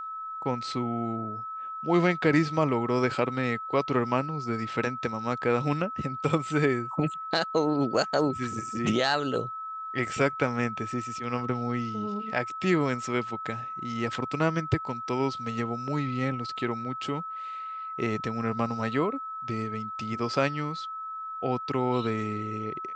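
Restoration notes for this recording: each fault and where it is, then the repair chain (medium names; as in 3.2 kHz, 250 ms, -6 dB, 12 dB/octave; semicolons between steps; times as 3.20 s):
whine 1.3 kHz -34 dBFS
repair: band-stop 1.3 kHz, Q 30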